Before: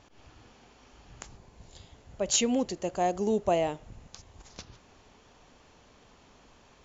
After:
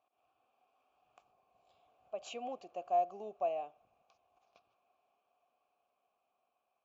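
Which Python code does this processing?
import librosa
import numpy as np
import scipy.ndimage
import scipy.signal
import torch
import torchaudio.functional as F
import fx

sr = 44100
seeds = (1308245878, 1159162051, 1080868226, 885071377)

y = fx.doppler_pass(x, sr, speed_mps=13, closest_m=11.0, pass_at_s=2.64)
y = fx.vowel_filter(y, sr, vowel='a')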